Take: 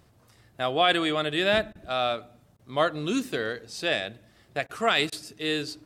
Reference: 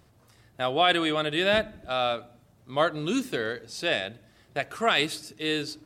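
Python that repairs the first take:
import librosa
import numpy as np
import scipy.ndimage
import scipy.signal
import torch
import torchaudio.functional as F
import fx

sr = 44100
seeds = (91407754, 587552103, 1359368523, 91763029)

y = fx.fix_interpolate(x, sr, at_s=(1.73, 2.57, 4.67, 5.1), length_ms=21.0)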